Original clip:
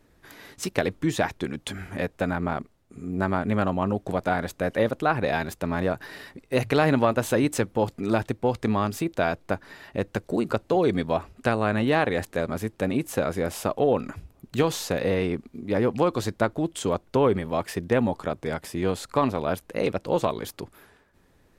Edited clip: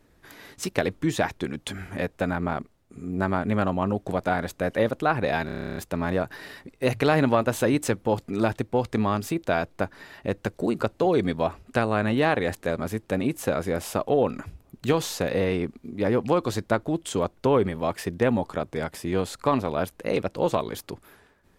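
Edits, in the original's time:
5.46 s: stutter 0.03 s, 11 plays

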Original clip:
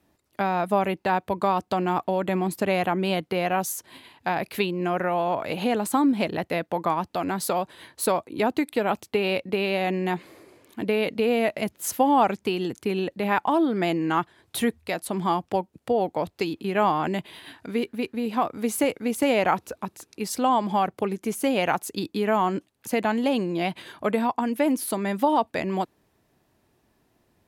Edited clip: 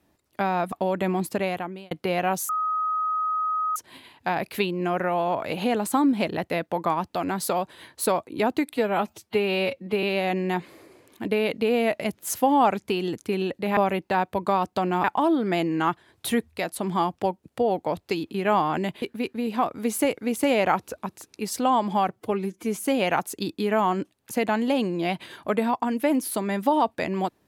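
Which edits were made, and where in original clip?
0.72–1.99 s: move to 13.34 s
2.53–3.18 s: fade out
3.76 s: add tone 1.26 kHz -22.5 dBFS 1.27 s
8.74–9.60 s: stretch 1.5×
17.32–17.81 s: delete
20.90–21.36 s: stretch 1.5×

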